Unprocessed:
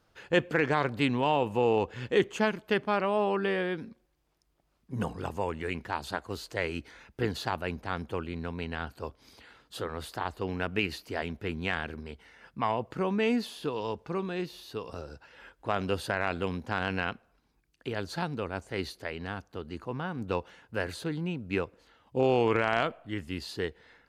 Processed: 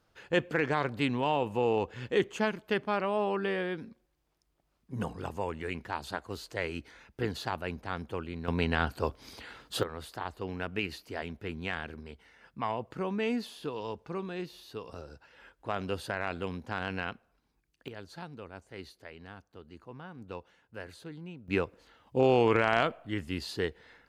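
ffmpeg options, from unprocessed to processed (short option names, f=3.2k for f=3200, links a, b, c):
-af "asetnsamples=n=441:p=0,asendcmd='8.48 volume volume 7dB;9.83 volume volume -4dB;17.88 volume volume -11dB;21.48 volume volume 1dB',volume=-2.5dB"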